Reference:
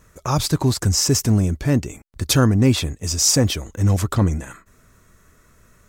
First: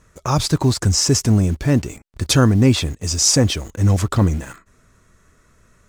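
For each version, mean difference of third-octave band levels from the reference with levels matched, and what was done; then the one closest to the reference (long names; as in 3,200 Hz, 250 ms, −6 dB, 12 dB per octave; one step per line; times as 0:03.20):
1.0 dB: low-pass filter 9,600 Hz 12 dB per octave
in parallel at −8 dB: bit-depth reduction 6 bits, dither none
on the sum: level −1 dB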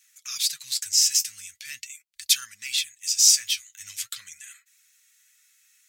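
17.5 dB: flanger 0.42 Hz, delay 2.5 ms, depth 9.7 ms, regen +45%
inverse Chebyshev high-pass filter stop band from 880 Hz, stop band 50 dB
level +5 dB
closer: first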